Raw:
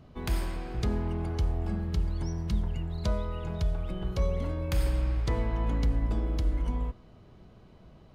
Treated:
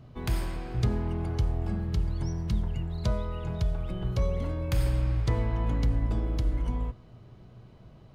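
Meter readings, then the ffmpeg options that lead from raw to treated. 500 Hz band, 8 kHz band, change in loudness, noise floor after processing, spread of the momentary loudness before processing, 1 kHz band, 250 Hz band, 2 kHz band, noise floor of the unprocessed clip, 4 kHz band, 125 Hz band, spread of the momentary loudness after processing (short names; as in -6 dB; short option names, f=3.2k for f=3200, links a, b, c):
0.0 dB, 0.0 dB, +1.0 dB, -52 dBFS, 5 LU, 0.0 dB, +0.5 dB, 0.0 dB, -54 dBFS, 0.0 dB, +2.5 dB, 5 LU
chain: -af "equalizer=f=120:w=5.3:g=11.5"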